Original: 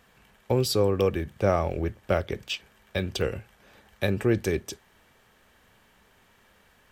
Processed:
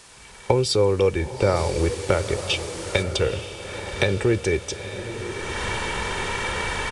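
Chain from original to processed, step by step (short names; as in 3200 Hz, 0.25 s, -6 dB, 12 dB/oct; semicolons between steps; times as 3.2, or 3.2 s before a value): recorder AGC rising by 28 dB/s; comb 2.2 ms, depth 42%; small resonant body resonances 1000/2300/3600 Hz, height 7 dB; in parallel at -9 dB: requantised 6-bit, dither triangular; 1.55–3.02 on the sum: added noise white -35 dBFS; on a send: diffused feedback echo 0.909 s, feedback 52%, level -10.5 dB; on the sum: downsampling 22050 Hz; gain -1 dB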